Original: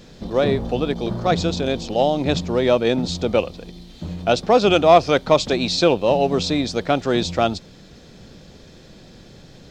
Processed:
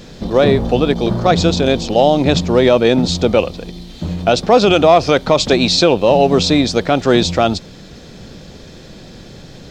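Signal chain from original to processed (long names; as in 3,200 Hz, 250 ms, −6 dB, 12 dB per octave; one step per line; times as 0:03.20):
brickwall limiter −9 dBFS, peak gain reduction 7 dB
level +8 dB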